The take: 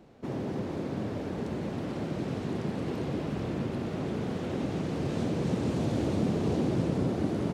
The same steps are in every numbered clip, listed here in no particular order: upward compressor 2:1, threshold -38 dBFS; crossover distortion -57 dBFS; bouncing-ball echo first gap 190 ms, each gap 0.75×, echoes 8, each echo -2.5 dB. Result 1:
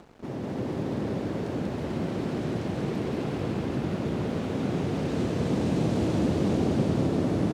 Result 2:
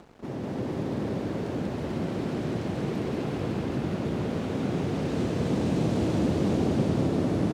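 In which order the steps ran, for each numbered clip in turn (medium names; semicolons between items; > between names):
bouncing-ball echo > crossover distortion > upward compressor; crossover distortion > bouncing-ball echo > upward compressor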